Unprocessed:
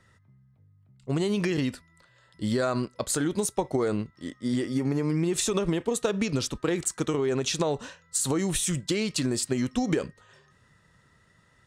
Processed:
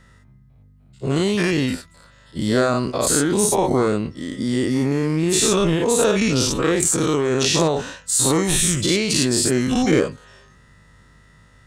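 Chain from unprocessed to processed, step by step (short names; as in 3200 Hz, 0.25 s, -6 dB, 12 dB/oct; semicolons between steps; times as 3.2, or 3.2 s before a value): spectral dilation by 0.12 s; hum 50 Hz, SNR 34 dB; gain +3.5 dB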